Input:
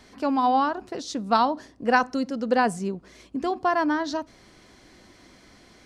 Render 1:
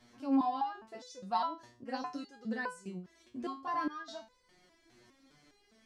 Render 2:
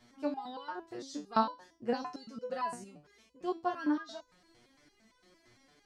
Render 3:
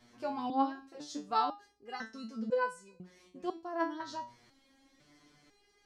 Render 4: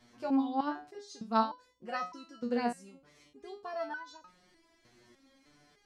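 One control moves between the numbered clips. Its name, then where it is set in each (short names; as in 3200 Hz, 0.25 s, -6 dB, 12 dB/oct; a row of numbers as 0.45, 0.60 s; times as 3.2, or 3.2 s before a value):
stepped resonator, rate: 4.9, 8.8, 2, 3.3 Hz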